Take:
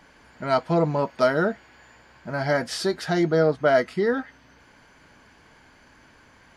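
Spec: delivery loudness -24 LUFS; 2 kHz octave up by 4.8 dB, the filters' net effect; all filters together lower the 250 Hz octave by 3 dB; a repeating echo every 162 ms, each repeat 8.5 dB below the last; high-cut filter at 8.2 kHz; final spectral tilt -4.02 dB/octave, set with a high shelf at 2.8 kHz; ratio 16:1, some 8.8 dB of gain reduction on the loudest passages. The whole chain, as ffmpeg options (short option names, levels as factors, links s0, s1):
-af "lowpass=8200,equalizer=f=250:t=o:g=-5,equalizer=f=2000:t=o:g=4,highshelf=f=2800:g=7.5,acompressor=threshold=0.0794:ratio=16,aecho=1:1:162|324|486|648:0.376|0.143|0.0543|0.0206,volume=1.5"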